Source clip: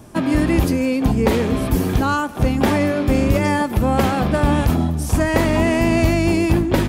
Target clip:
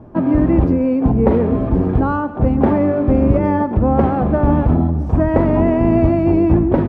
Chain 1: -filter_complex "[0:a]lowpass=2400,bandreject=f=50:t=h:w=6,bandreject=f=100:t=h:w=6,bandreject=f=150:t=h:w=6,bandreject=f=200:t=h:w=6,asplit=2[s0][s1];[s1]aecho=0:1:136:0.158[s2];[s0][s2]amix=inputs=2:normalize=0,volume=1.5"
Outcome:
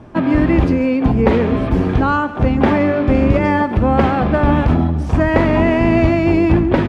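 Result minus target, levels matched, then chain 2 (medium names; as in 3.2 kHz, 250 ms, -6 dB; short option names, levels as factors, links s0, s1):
2 kHz band +10.0 dB
-filter_complex "[0:a]lowpass=920,bandreject=f=50:t=h:w=6,bandreject=f=100:t=h:w=6,bandreject=f=150:t=h:w=6,bandreject=f=200:t=h:w=6,asplit=2[s0][s1];[s1]aecho=0:1:136:0.158[s2];[s0][s2]amix=inputs=2:normalize=0,volume=1.5"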